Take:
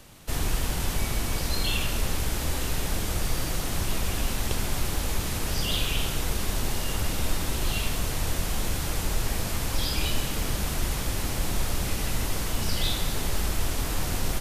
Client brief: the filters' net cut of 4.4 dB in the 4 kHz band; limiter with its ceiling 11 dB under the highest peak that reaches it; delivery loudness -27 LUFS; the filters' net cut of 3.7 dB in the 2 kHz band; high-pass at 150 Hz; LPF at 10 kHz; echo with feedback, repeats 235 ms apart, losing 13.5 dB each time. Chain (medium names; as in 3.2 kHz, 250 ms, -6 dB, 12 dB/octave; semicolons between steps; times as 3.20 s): high-pass 150 Hz; low-pass 10 kHz; peaking EQ 2 kHz -3.5 dB; peaking EQ 4 kHz -4.5 dB; peak limiter -29.5 dBFS; feedback delay 235 ms, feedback 21%, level -13.5 dB; trim +10.5 dB